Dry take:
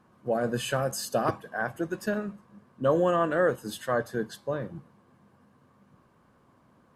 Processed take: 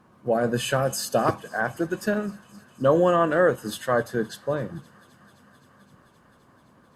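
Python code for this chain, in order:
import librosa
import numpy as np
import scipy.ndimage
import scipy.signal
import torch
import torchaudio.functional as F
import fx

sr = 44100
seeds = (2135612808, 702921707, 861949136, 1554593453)

y = fx.echo_wet_highpass(x, sr, ms=260, feedback_pct=83, hz=1800.0, wet_db=-22.5)
y = F.gain(torch.from_numpy(y), 4.5).numpy()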